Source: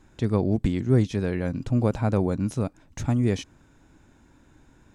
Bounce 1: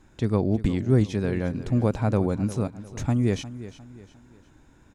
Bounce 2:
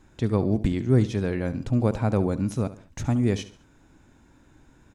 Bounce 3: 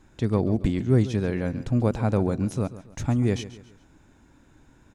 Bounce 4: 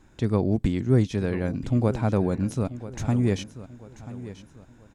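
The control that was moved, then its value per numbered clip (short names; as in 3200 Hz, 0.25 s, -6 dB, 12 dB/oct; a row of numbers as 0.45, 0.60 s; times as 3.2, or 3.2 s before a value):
feedback echo, time: 354, 70, 138, 987 ms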